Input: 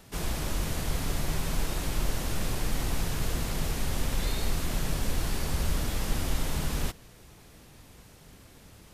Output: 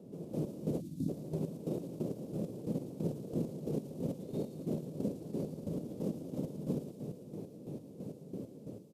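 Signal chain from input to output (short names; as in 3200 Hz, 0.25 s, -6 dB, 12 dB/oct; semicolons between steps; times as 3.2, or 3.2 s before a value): band shelf 1100 Hz -9.5 dB; in parallel at -2 dB: compressor, threshold -37 dBFS, peak gain reduction 15.5 dB; on the sum: spectral delete 0.81–1.09, 350–3400 Hz; AGC gain up to 10 dB; echo 0.434 s -20 dB; limiter -19.5 dBFS, peak gain reduction 14.5 dB; HPF 150 Hz 24 dB/oct; chopper 3 Hz, depth 65%, duty 35%; EQ curve 580 Hz 0 dB, 2000 Hz -30 dB, 9800 Hz -26 dB; on a send: thin delay 0.113 s, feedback 68%, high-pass 3400 Hz, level -6.5 dB; on the sum: gain +1.5 dB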